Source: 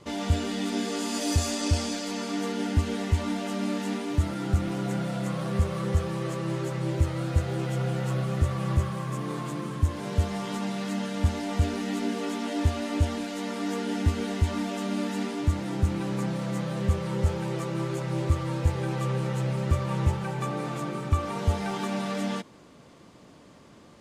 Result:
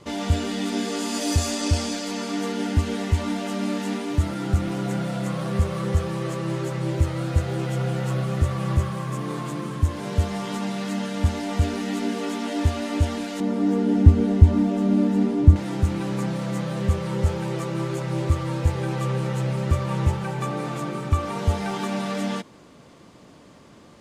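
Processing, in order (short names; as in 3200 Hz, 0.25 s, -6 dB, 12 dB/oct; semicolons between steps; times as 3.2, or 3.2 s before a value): 13.4–15.56 tilt shelf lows +9.5 dB, about 720 Hz; gain +3 dB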